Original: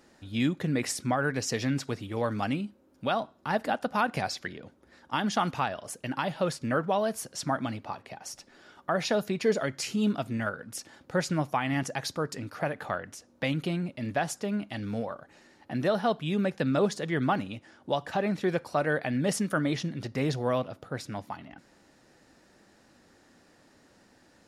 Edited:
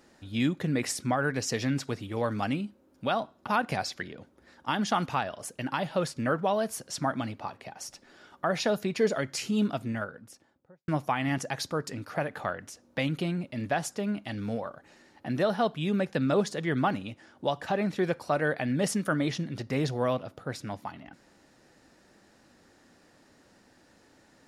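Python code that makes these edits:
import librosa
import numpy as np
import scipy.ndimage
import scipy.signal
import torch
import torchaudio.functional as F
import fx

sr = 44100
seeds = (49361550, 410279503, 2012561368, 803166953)

y = fx.studio_fade_out(x, sr, start_s=10.12, length_s=1.21)
y = fx.edit(y, sr, fx.cut(start_s=3.47, length_s=0.45), tone=tone)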